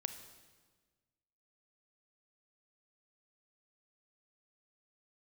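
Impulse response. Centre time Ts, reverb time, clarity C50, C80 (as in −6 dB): 15 ms, 1.4 s, 10.0 dB, 11.5 dB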